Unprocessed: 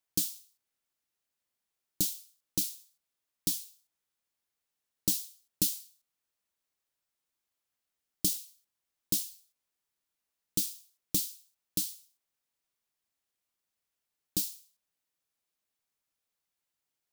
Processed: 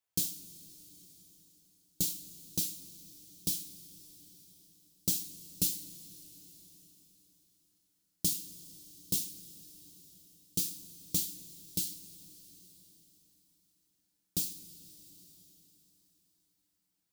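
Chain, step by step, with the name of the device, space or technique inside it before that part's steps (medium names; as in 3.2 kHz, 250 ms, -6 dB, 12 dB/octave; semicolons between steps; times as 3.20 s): compressed reverb return (on a send at -6 dB: reverberation RT60 2.6 s, pre-delay 70 ms + compression, threshold -48 dBFS, peak gain reduction 18 dB); on the sum: two-slope reverb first 0.24 s, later 4.5 s, from -22 dB, DRR 2 dB; trim -3.5 dB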